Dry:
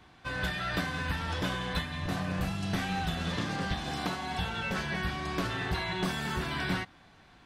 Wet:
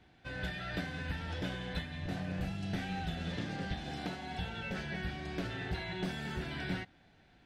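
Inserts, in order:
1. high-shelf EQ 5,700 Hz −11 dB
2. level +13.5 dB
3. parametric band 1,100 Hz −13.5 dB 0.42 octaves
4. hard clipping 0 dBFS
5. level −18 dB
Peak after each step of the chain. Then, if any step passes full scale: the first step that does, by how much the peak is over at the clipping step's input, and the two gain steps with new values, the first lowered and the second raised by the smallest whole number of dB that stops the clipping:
−18.0, −4.5, −4.5, −4.5, −22.5 dBFS
no step passes full scale

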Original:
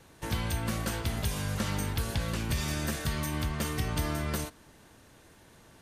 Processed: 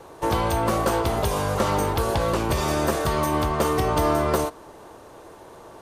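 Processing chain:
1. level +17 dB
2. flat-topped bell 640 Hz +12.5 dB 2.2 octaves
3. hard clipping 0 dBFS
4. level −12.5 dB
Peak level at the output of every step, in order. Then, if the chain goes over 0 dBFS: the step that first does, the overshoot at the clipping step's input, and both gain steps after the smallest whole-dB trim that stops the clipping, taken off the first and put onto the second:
−1.0, +6.0, 0.0, −12.5 dBFS
step 2, 6.0 dB
step 1 +11 dB, step 4 −6.5 dB

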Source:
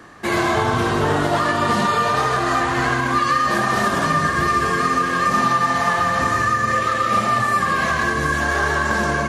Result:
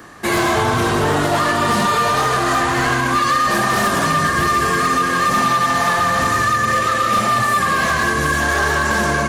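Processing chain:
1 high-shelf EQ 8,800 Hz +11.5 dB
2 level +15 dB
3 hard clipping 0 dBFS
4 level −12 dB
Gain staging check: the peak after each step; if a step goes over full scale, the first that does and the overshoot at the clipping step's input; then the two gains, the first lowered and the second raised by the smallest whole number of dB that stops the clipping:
−6.5, +8.5, 0.0, −12.0 dBFS
step 2, 8.5 dB
step 2 +6 dB, step 4 −3 dB

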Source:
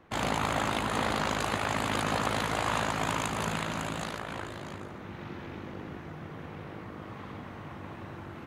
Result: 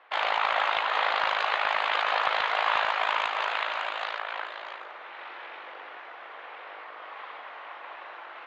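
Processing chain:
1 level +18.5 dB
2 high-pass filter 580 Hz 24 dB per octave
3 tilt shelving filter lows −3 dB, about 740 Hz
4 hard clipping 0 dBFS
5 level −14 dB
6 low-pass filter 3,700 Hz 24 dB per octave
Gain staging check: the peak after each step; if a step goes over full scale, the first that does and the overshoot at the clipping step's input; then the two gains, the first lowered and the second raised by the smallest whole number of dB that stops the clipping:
+5.0, +4.0, +5.5, 0.0, −14.0, −13.0 dBFS
step 1, 5.5 dB
step 1 +12.5 dB, step 5 −8 dB

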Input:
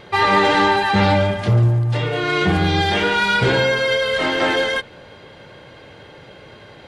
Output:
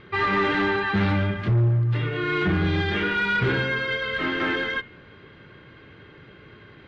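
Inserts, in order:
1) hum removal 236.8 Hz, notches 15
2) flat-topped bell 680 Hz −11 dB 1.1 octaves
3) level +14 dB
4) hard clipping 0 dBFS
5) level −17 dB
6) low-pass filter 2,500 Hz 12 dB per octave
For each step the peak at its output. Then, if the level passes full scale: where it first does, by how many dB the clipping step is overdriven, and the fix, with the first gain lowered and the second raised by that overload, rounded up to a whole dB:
−5.0, −5.5, +8.5, 0.0, −17.0, −16.5 dBFS
step 3, 8.5 dB
step 3 +5 dB, step 5 −8 dB

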